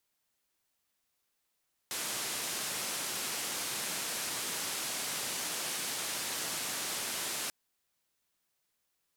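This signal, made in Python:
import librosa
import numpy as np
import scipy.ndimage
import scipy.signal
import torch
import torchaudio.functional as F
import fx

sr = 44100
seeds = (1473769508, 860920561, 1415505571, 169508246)

y = fx.band_noise(sr, seeds[0], length_s=5.59, low_hz=140.0, high_hz=11000.0, level_db=-36.5)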